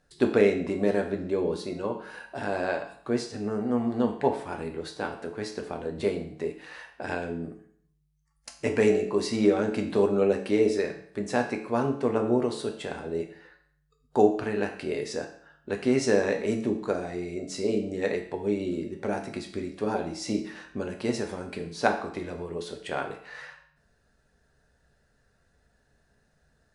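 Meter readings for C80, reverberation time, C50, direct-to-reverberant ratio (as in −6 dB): 12.0 dB, 0.60 s, 9.0 dB, 3.5 dB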